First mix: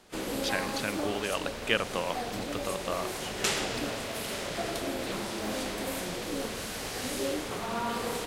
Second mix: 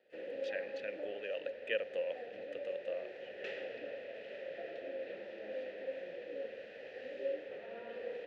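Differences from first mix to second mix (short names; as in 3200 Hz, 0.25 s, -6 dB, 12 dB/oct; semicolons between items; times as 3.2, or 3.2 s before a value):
background: add air absorption 210 m; master: add vowel filter e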